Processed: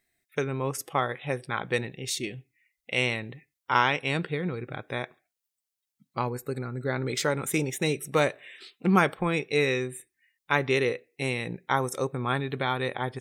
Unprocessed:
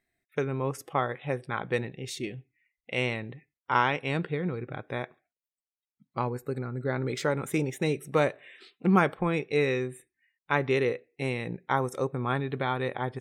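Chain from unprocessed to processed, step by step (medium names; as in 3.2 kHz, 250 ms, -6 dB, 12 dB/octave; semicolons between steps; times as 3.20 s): treble shelf 2.8 kHz +10 dB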